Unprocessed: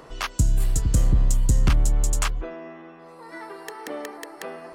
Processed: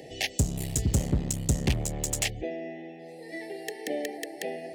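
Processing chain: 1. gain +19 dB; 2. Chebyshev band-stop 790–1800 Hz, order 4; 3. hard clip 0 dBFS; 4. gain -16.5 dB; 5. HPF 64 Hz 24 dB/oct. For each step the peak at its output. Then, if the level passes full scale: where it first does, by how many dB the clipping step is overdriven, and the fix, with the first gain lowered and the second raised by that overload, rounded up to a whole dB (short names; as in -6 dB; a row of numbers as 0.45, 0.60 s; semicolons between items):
+8.5, +8.0, 0.0, -16.5, -10.5 dBFS; step 1, 8.0 dB; step 1 +11 dB, step 4 -8.5 dB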